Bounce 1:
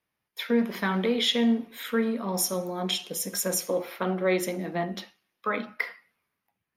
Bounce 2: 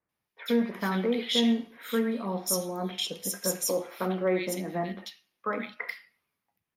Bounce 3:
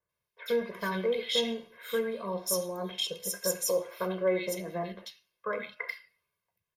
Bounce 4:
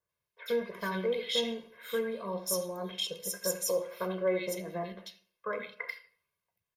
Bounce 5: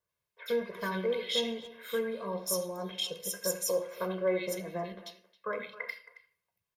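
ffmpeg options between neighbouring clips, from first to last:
ffmpeg -i in.wav -filter_complex "[0:a]acrossover=split=2000[link_01][link_02];[link_02]adelay=90[link_03];[link_01][link_03]amix=inputs=2:normalize=0,volume=-1.5dB" out.wav
ffmpeg -i in.wav -af "aecho=1:1:1.9:0.93,volume=-4.5dB" out.wav
ffmpeg -i in.wav -filter_complex "[0:a]asplit=2[link_01][link_02];[link_02]adelay=80,lowpass=frequency=1700:poles=1,volume=-16.5dB,asplit=2[link_03][link_04];[link_04]adelay=80,lowpass=frequency=1700:poles=1,volume=0.41,asplit=2[link_05][link_06];[link_06]adelay=80,lowpass=frequency=1700:poles=1,volume=0.41,asplit=2[link_07][link_08];[link_08]adelay=80,lowpass=frequency=1700:poles=1,volume=0.41[link_09];[link_01][link_03][link_05][link_07][link_09]amix=inputs=5:normalize=0,volume=-2dB" out.wav
ffmpeg -i in.wav -filter_complex "[0:a]asplit=2[link_01][link_02];[link_02]adelay=270,highpass=300,lowpass=3400,asoftclip=type=hard:threshold=-26dB,volume=-16dB[link_03];[link_01][link_03]amix=inputs=2:normalize=0" out.wav

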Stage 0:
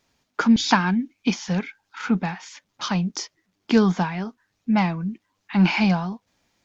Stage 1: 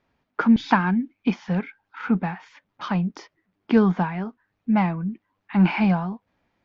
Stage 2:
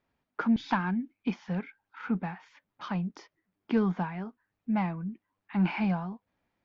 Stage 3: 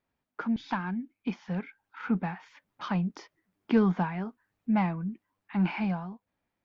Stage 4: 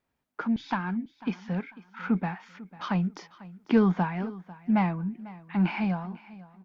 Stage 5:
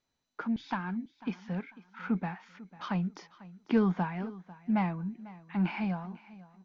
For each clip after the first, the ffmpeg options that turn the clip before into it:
ffmpeg -i in.wav -af "lowpass=2100" out.wav
ffmpeg -i in.wav -af "asoftclip=type=tanh:threshold=-5.5dB,volume=-8dB" out.wav
ffmpeg -i in.wav -af "dynaudnorm=framelen=300:gausssize=11:maxgain=7dB,volume=-4dB" out.wav
ffmpeg -i in.wav -af "aecho=1:1:496|992|1488:0.112|0.0337|0.0101,volume=2dB" out.wav
ffmpeg -i in.wav -af "volume=-4.5dB" -ar 16000 -c:a mp2 -b:a 128k out.mp2

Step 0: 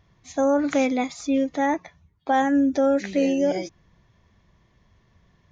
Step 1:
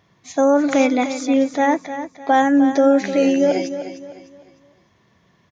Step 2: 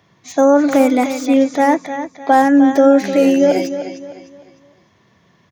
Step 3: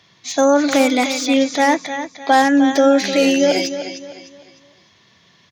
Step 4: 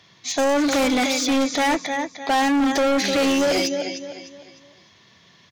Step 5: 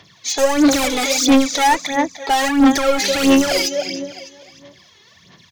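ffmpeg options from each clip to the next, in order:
ffmpeg -i in.wav -af "highpass=160,aecho=1:1:303|606|909|1212:0.282|0.0986|0.0345|0.0121,volume=5.5dB" out.wav
ffmpeg -i in.wav -filter_complex "[0:a]highpass=76,acrossover=split=130|1900[link_01][link_02][link_03];[link_03]aeval=exprs='0.0266*(abs(mod(val(0)/0.0266+3,4)-2)-1)':channel_layout=same[link_04];[link_01][link_02][link_04]amix=inputs=3:normalize=0,volume=4dB" out.wav
ffmpeg -i in.wav -af "equalizer=frequency=4100:width=0.62:gain=15,volume=-3.5dB" out.wav
ffmpeg -i in.wav -af "asoftclip=type=hard:threshold=-17dB" out.wav
ffmpeg -i in.wav -af "highshelf=frequency=6100:gain=8,aphaser=in_gain=1:out_gain=1:delay=2.4:decay=0.67:speed=1.5:type=sinusoidal" out.wav

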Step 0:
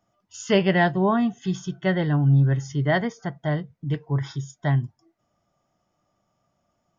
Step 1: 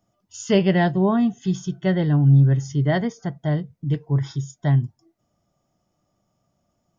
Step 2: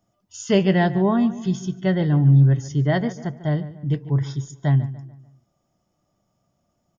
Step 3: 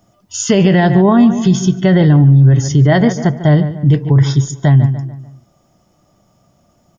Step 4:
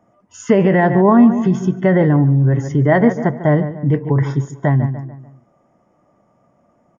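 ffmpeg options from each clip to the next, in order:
ffmpeg -i in.wav -af "equalizer=frequency=1500:width=0.45:gain=-8,volume=4dB" out.wav
ffmpeg -i in.wav -filter_complex "[0:a]asplit=2[link_01][link_02];[link_02]adelay=146,lowpass=frequency=2600:poles=1,volume=-15dB,asplit=2[link_03][link_04];[link_04]adelay=146,lowpass=frequency=2600:poles=1,volume=0.43,asplit=2[link_05][link_06];[link_06]adelay=146,lowpass=frequency=2600:poles=1,volume=0.43,asplit=2[link_07][link_08];[link_08]adelay=146,lowpass=frequency=2600:poles=1,volume=0.43[link_09];[link_01][link_03][link_05][link_07][link_09]amix=inputs=5:normalize=0" out.wav
ffmpeg -i in.wav -af "alimiter=level_in=17dB:limit=-1dB:release=50:level=0:latency=1,volume=-1.5dB" out.wav
ffmpeg -i in.wav -af "equalizer=frequency=125:width_type=o:width=1:gain=4,equalizer=frequency=250:width_type=o:width=1:gain=10,equalizer=frequency=500:width_type=o:width=1:gain=11,equalizer=frequency=1000:width_type=o:width=1:gain=11,equalizer=frequency=2000:width_type=o:width=1:gain=12,equalizer=frequency=4000:width_type=o:width=1:gain=-11,aresample=22050,aresample=44100,volume=-13.5dB" out.wav

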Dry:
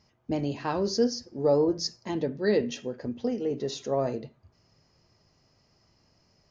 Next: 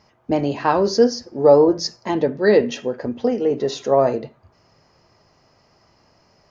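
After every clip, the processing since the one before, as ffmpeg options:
ffmpeg -i in.wav -af "equalizer=frequency=940:width_type=o:width=3:gain=9.5,volume=4dB" out.wav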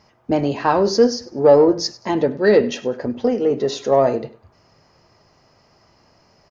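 ffmpeg -i in.wav -filter_complex "[0:a]asplit=2[link_01][link_02];[link_02]asoftclip=type=tanh:threshold=-13dB,volume=-9dB[link_03];[link_01][link_03]amix=inputs=2:normalize=0,aecho=1:1:99|198:0.1|0.029,volume=-1dB" out.wav

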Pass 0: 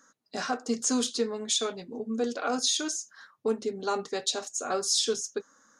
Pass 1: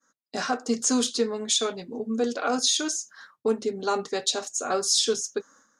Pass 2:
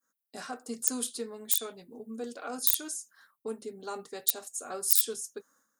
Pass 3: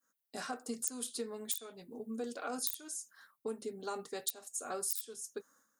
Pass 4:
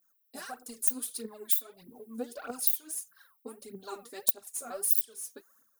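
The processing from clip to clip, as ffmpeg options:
ffmpeg -i in.wav -af "agate=range=-33dB:threshold=-54dB:ratio=3:detection=peak,volume=3.5dB" out.wav
ffmpeg -i in.wav -af "aeval=exprs='(mod(4.47*val(0)+1,2)-1)/4.47':channel_layout=same,aexciter=amount=12.2:drive=4.3:freq=8800,volume=-12.5dB" out.wav
ffmpeg -i in.wav -af "acompressor=threshold=-34dB:ratio=6" out.wav
ffmpeg -i in.wav -af "aphaser=in_gain=1:out_gain=1:delay=4.4:decay=0.75:speed=1.6:type=triangular,aexciter=amount=4.8:drive=3.2:freq=9900,volume=-4.5dB" out.wav

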